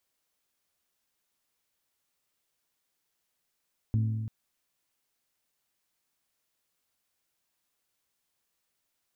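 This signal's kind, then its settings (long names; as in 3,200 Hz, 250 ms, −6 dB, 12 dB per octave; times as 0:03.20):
struck metal bell, length 0.34 s, lowest mode 110 Hz, decay 1.83 s, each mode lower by 9.5 dB, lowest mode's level −22 dB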